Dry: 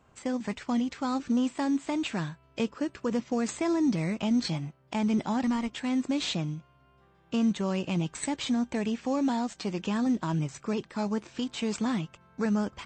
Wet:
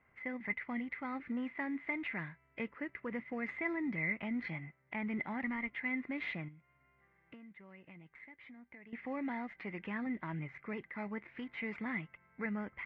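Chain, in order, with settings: ladder low-pass 2100 Hz, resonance 90%; 6.48–8.93 compressor 8:1, threshold -54 dBFS, peak gain reduction 19 dB; gain +1 dB

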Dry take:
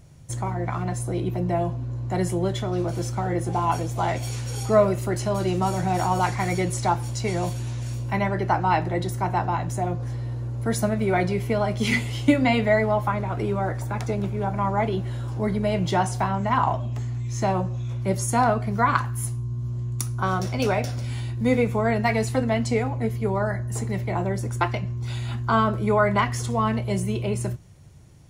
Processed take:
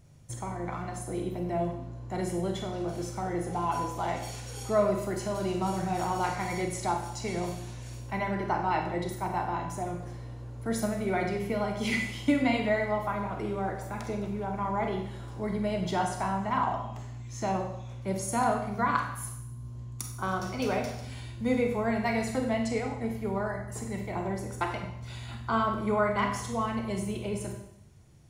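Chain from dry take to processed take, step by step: Schroeder reverb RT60 0.74 s, combs from 31 ms, DRR 3.5 dB; gain -7.5 dB

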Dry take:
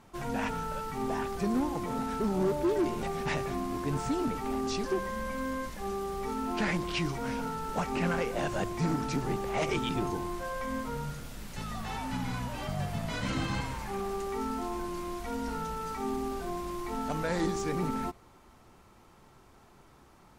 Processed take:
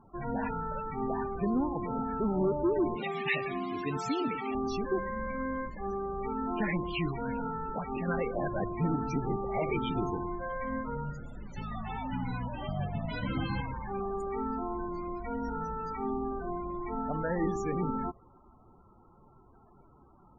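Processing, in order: 2.96–4.55 weighting filter D; 7.62–8.08 compressor, threshold -31 dBFS, peak gain reduction 5.5 dB; loudest bins only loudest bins 32

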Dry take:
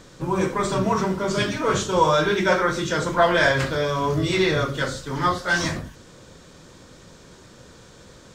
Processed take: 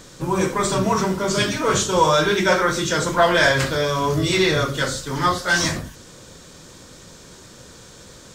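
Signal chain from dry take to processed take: high shelf 4900 Hz +9.5 dB; in parallel at -11.5 dB: soft clip -15 dBFS, distortion -14 dB

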